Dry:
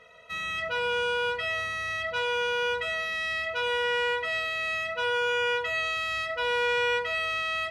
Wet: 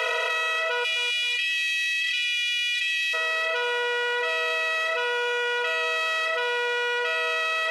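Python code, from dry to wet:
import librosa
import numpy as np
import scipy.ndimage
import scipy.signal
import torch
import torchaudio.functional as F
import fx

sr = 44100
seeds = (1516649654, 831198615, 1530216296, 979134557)

y = fx.bin_compress(x, sr, power=0.4)
y = fx.steep_highpass(y, sr, hz=fx.steps((0.0, 430.0), (0.83, 2100.0), (3.13, 350.0)), slope=48)
y = fx.echo_feedback(y, sr, ms=262, feedback_pct=27, wet_db=-16)
y = fx.env_flatten(y, sr, amount_pct=100)
y = y * librosa.db_to_amplitude(-2.5)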